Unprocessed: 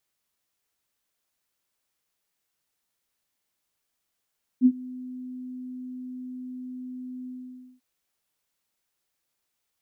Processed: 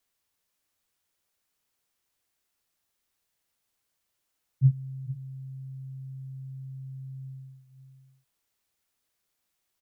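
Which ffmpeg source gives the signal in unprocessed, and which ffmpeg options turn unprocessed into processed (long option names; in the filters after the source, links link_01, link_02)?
-f lavfi -i "aevalsrc='0.266*sin(2*PI*253*t)':duration=3.193:sample_rate=44100,afade=type=in:duration=0.047,afade=type=out:start_time=0.047:duration=0.058:silence=0.0708,afade=type=out:start_time=2.66:duration=0.533"
-filter_complex "[0:a]afreqshift=-120,asplit=2[link_01][link_02];[link_02]aecho=0:1:447:0.266[link_03];[link_01][link_03]amix=inputs=2:normalize=0"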